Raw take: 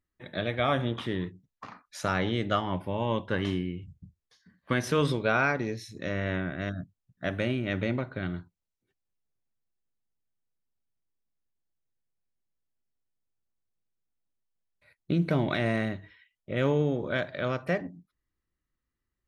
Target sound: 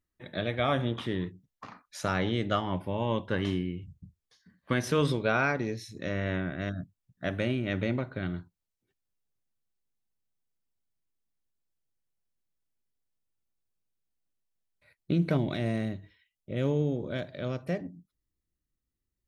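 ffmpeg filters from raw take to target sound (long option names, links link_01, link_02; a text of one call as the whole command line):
ffmpeg -i in.wav -af "asetnsamples=nb_out_samples=441:pad=0,asendcmd='15.37 equalizer g -11',equalizer=frequency=1400:width=0.57:gain=-2" out.wav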